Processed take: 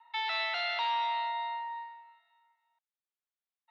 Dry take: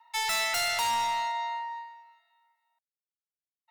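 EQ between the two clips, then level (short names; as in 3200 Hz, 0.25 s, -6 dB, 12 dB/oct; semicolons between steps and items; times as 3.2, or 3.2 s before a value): dynamic EQ 1400 Hz, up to -4 dB, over -39 dBFS, Q 1; Chebyshev high-pass 740 Hz, order 2; elliptic low-pass 3800 Hz, stop band 80 dB; 0.0 dB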